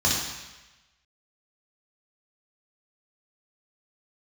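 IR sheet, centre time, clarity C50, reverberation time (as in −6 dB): 67 ms, 0.5 dB, 1.1 s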